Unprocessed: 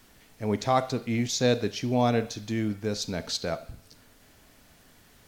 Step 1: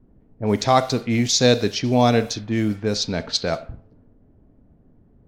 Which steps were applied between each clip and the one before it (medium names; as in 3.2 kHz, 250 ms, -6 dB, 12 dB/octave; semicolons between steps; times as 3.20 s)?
level-controlled noise filter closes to 310 Hz, open at -24 dBFS; dynamic bell 4.9 kHz, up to +5 dB, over -44 dBFS, Q 1.2; trim +7 dB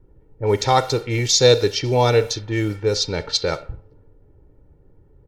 comb 2.2 ms, depth 81%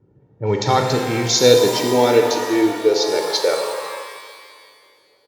resampled via 16 kHz; high-pass sweep 140 Hz -> 570 Hz, 0.59–3.93 s; pitch-shifted reverb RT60 1.9 s, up +12 st, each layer -8 dB, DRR 3 dB; trim -1.5 dB